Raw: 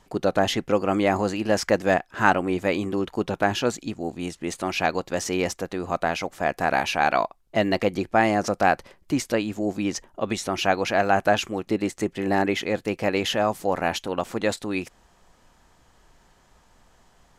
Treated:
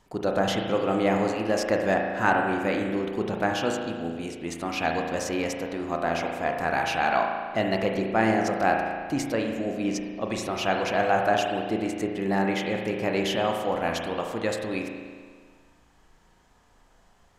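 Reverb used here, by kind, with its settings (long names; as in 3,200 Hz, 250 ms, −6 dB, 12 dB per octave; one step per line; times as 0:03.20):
spring reverb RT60 1.7 s, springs 36 ms, chirp 75 ms, DRR 1.5 dB
level −4.5 dB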